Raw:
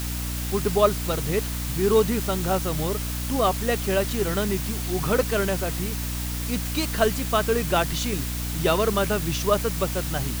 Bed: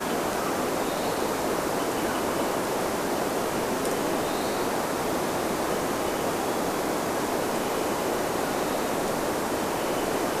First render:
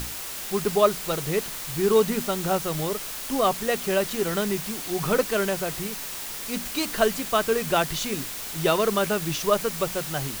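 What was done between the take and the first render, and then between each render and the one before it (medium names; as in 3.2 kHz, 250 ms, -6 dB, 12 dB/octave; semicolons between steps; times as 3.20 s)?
hum notches 60/120/180/240/300 Hz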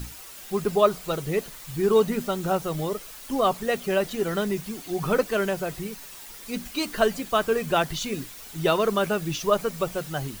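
noise reduction 10 dB, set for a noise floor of -35 dBFS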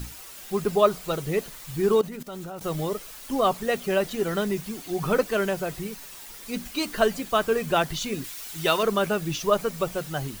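1.95–2.61 s: level held to a coarse grid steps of 18 dB; 8.24–8.83 s: tilt shelf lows -5 dB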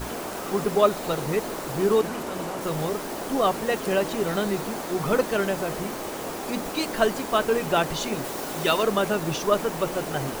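add bed -6 dB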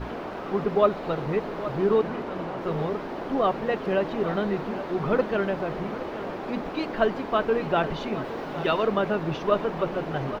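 distance through air 320 m; delay 820 ms -13.5 dB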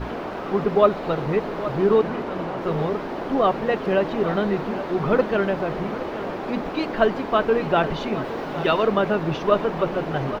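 trim +4 dB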